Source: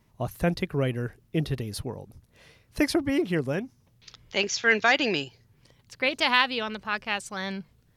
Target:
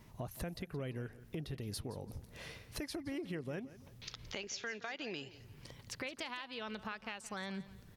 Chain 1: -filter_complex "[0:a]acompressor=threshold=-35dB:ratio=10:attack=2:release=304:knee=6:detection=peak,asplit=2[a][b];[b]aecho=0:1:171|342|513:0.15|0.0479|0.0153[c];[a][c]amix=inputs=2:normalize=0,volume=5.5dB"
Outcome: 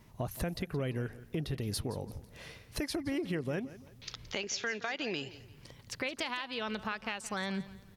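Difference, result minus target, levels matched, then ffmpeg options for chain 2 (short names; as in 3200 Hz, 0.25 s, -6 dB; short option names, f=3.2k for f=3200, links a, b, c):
compressor: peak gain reduction -7 dB
-filter_complex "[0:a]acompressor=threshold=-42.5dB:ratio=10:attack=2:release=304:knee=6:detection=peak,asplit=2[a][b];[b]aecho=0:1:171|342|513:0.15|0.0479|0.0153[c];[a][c]amix=inputs=2:normalize=0,volume=5.5dB"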